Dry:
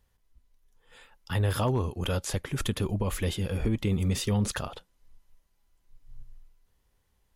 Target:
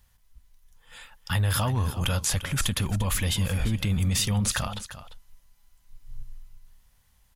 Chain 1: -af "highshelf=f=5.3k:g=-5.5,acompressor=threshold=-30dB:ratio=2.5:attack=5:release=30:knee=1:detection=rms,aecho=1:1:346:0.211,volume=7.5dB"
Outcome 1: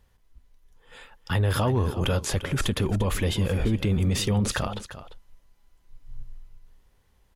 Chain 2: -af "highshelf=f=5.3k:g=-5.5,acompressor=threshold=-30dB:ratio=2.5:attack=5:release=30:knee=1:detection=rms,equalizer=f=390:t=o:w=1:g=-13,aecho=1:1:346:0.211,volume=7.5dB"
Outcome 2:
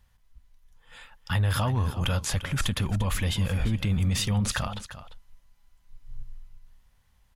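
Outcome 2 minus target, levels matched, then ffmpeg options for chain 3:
8000 Hz band -4.5 dB
-af "highshelf=f=5.3k:g=4.5,acompressor=threshold=-30dB:ratio=2.5:attack=5:release=30:knee=1:detection=rms,equalizer=f=390:t=o:w=1:g=-13,aecho=1:1:346:0.211,volume=7.5dB"

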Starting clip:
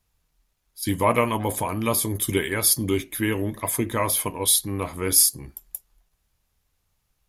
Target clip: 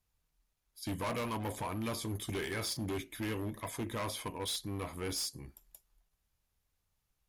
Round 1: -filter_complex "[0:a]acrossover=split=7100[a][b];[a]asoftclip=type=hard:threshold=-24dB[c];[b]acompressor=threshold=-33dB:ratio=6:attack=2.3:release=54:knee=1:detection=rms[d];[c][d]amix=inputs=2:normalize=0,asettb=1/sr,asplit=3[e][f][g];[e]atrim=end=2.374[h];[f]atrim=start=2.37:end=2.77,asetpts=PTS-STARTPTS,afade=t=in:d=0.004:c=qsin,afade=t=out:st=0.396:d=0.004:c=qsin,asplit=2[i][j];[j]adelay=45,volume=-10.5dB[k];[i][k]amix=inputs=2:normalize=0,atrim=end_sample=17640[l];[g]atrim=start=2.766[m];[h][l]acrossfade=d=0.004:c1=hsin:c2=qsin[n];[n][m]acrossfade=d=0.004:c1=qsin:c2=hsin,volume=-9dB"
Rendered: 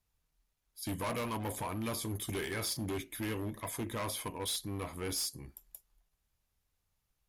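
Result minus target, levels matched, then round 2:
compressor: peak gain reduction -8 dB
-filter_complex "[0:a]acrossover=split=7100[a][b];[a]asoftclip=type=hard:threshold=-24dB[c];[b]acompressor=threshold=-42.5dB:ratio=6:attack=2.3:release=54:knee=1:detection=rms[d];[c][d]amix=inputs=2:normalize=0,asettb=1/sr,asplit=3[e][f][g];[e]atrim=end=2.374[h];[f]atrim=start=2.37:end=2.77,asetpts=PTS-STARTPTS,afade=t=in:d=0.004:c=qsin,afade=t=out:st=0.396:d=0.004:c=qsin,asplit=2[i][j];[j]adelay=45,volume=-10.5dB[k];[i][k]amix=inputs=2:normalize=0,atrim=end_sample=17640[l];[g]atrim=start=2.766[m];[h][l]acrossfade=d=0.004:c1=hsin:c2=qsin[n];[n][m]acrossfade=d=0.004:c1=qsin:c2=hsin,volume=-9dB"

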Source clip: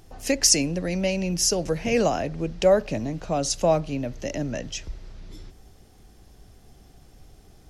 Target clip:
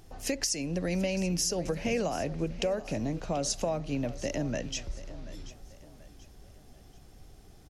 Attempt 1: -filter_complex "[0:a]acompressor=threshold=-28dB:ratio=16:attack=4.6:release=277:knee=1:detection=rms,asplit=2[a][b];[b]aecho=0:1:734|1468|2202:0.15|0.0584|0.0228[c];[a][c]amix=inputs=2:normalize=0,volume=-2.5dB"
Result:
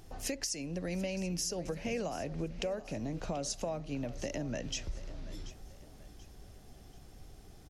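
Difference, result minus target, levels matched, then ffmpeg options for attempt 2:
compressor: peak gain reduction +6 dB
-filter_complex "[0:a]acompressor=threshold=-21.5dB:ratio=16:attack=4.6:release=277:knee=1:detection=rms,asplit=2[a][b];[b]aecho=0:1:734|1468|2202:0.15|0.0584|0.0228[c];[a][c]amix=inputs=2:normalize=0,volume=-2.5dB"

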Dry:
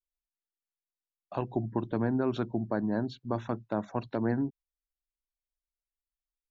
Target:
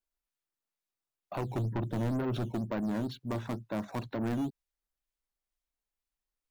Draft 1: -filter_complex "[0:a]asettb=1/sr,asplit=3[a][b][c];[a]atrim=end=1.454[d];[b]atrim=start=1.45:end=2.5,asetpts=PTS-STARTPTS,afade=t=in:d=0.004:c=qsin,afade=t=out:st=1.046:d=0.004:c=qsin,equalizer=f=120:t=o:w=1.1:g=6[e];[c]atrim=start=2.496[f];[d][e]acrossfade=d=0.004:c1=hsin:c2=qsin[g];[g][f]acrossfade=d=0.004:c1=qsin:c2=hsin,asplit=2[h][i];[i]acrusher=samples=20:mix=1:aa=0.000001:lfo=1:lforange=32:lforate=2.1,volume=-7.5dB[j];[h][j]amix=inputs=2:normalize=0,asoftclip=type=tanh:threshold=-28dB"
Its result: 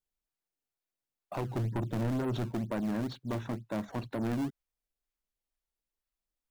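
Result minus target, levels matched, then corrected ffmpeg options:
decimation with a swept rate: distortion +8 dB
-filter_complex "[0:a]asettb=1/sr,asplit=3[a][b][c];[a]atrim=end=1.454[d];[b]atrim=start=1.45:end=2.5,asetpts=PTS-STARTPTS,afade=t=in:d=0.004:c=qsin,afade=t=out:st=1.046:d=0.004:c=qsin,equalizer=f=120:t=o:w=1.1:g=6[e];[c]atrim=start=2.496[f];[d][e]acrossfade=d=0.004:c1=hsin:c2=qsin[g];[g][f]acrossfade=d=0.004:c1=qsin:c2=hsin,asplit=2[h][i];[i]acrusher=samples=8:mix=1:aa=0.000001:lfo=1:lforange=12.8:lforate=2.1,volume=-7.5dB[j];[h][j]amix=inputs=2:normalize=0,asoftclip=type=tanh:threshold=-28dB"

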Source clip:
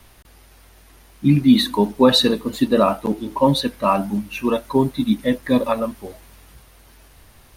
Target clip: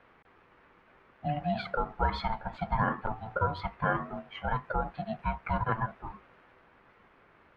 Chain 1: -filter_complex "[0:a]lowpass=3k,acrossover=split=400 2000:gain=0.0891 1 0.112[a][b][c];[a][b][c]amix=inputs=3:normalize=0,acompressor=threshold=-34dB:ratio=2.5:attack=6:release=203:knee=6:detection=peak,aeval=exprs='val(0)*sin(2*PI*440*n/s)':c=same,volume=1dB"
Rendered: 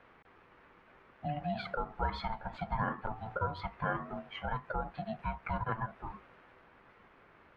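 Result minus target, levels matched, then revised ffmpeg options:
compressor: peak gain reduction +5.5 dB
-filter_complex "[0:a]lowpass=3k,acrossover=split=400 2000:gain=0.0891 1 0.112[a][b][c];[a][b][c]amix=inputs=3:normalize=0,acompressor=threshold=-25dB:ratio=2.5:attack=6:release=203:knee=6:detection=peak,aeval=exprs='val(0)*sin(2*PI*440*n/s)':c=same,volume=1dB"

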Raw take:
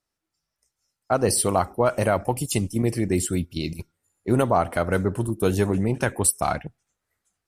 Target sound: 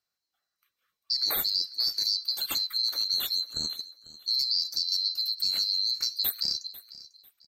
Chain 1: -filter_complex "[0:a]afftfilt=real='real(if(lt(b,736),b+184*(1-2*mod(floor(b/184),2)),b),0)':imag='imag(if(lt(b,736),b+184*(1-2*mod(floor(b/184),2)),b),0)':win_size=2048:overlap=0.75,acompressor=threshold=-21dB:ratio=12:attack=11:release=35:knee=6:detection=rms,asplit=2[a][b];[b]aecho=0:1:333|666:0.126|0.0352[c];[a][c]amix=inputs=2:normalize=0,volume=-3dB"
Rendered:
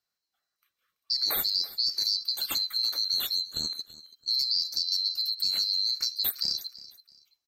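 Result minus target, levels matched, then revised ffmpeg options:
echo 0.163 s early
-filter_complex "[0:a]afftfilt=real='real(if(lt(b,736),b+184*(1-2*mod(floor(b/184),2)),b),0)':imag='imag(if(lt(b,736),b+184*(1-2*mod(floor(b/184),2)),b),0)':win_size=2048:overlap=0.75,acompressor=threshold=-21dB:ratio=12:attack=11:release=35:knee=6:detection=rms,asplit=2[a][b];[b]aecho=0:1:496|992:0.126|0.0352[c];[a][c]amix=inputs=2:normalize=0,volume=-3dB"

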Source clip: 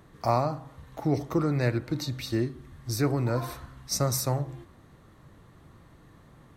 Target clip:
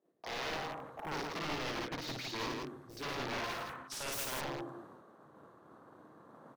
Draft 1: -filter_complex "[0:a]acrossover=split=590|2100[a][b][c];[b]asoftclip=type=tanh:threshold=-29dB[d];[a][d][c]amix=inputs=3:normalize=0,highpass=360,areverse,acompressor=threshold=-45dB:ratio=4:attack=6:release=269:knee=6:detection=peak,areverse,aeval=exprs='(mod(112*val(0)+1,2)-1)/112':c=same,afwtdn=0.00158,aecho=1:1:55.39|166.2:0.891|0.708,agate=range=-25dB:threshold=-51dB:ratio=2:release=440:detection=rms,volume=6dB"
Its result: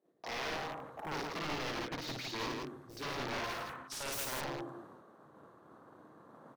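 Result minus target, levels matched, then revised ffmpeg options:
soft clip: distortion +10 dB
-filter_complex "[0:a]acrossover=split=590|2100[a][b][c];[b]asoftclip=type=tanh:threshold=-19.5dB[d];[a][d][c]amix=inputs=3:normalize=0,highpass=360,areverse,acompressor=threshold=-45dB:ratio=4:attack=6:release=269:knee=6:detection=peak,areverse,aeval=exprs='(mod(112*val(0)+1,2)-1)/112':c=same,afwtdn=0.00158,aecho=1:1:55.39|166.2:0.891|0.708,agate=range=-25dB:threshold=-51dB:ratio=2:release=440:detection=rms,volume=6dB"

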